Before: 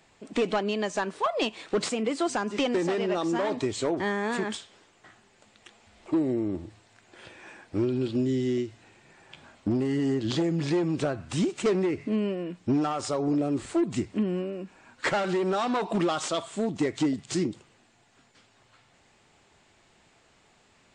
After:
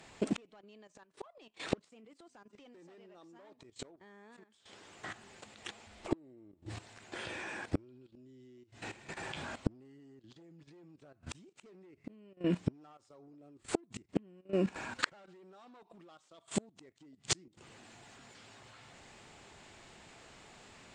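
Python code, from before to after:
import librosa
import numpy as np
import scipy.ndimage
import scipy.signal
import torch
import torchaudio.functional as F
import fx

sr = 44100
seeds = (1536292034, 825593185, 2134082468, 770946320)

y = fx.cheby_harmonics(x, sr, harmonics=(3, 5), levels_db=(-41, -39), full_scale_db=-18.5)
y = fx.gate_flip(y, sr, shuts_db=-24.0, range_db=-40)
y = fx.level_steps(y, sr, step_db=14)
y = F.gain(torch.from_numpy(y), 13.5).numpy()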